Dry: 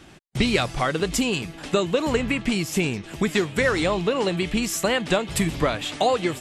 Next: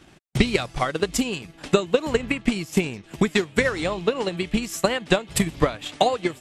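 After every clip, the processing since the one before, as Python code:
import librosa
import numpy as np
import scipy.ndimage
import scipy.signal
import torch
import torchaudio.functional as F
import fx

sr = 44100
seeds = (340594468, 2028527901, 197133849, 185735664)

y = fx.transient(x, sr, attack_db=9, sustain_db=-6)
y = F.gain(torch.from_numpy(y), -4.0).numpy()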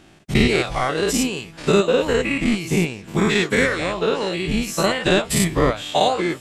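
y = fx.spec_dilate(x, sr, span_ms=120)
y = F.gain(torch.from_numpy(y), -3.0).numpy()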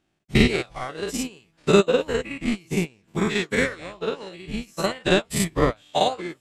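y = fx.upward_expand(x, sr, threshold_db=-29.0, expansion=2.5)
y = F.gain(torch.from_numpy(y), 1.5).numpy()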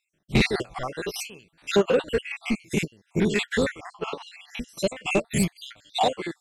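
y = fx.spec_dropout(x, sr, seeds[0], share_pct=54)
y = 10.0 ** (-16.0 / 20.0) * np.tanh(y / 10.0 ** (-16.0 / 20.0))
y = F.gain(torch.from_numpy(y), 3.0).numpy()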